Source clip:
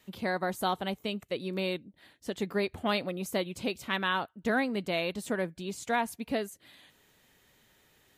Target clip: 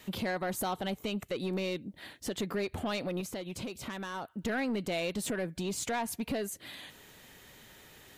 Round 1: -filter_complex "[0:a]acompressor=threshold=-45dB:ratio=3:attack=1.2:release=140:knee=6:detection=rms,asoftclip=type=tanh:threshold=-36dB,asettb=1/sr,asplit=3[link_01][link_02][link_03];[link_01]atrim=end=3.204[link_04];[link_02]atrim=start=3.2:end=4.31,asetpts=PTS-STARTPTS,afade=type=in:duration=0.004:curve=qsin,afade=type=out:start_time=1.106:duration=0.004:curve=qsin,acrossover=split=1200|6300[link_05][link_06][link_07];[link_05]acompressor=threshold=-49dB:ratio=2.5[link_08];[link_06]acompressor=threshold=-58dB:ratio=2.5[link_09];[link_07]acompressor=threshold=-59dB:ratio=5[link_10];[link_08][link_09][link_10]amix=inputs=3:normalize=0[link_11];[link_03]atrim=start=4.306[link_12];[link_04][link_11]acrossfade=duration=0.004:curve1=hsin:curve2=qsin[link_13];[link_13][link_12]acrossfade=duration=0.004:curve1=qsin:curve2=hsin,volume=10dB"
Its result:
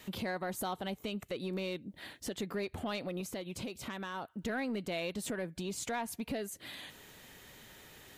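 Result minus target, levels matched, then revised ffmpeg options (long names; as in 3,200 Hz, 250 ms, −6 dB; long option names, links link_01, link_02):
downward compressor: peak gain reduction +5 dB
-filter_complex "[0:a]acompressor=threshold=-37.5dB:ratio=3:attack=1.2:release=140:knee=6:detection=rms,asoftclip=type=tanh:threshold=-36dB,asettb=1/sr,asplit=3[link_01][link_02][link_03];[link_01]atrim=end=3.204[link_04];[link_02]atrim=start=3.2:end=4.31,asetpts=PTS-STARTPTS,afade=type=in:duration=0.004:curve=qsin,afade=type=out:start_time=1.106:duration=0.004:curve=qsin,acrossover=split=1200|6300[link_05][link_06][link_07];[link_05]acompressor=threshold=-49dB:ratio=2.5[link_08];[link_06]acompressor=threshold=-58dB:ratio=2.5[link_09];[link_07]acompressor=threshold=-59dB:ratio=5[link_10];[link_08][link_09][link_10]amix=inputs=3:normalize=0[link_11];[link_03]atrim=start=4.306[link_12];[link_04][link_11]acrossfade=duration=0.004:curve1=hsin:curve2=qsin[link_13];[link_13][link_12]acrossfade=duration=0.004:curve1=qsin:curve2=hsin,volume=10dB"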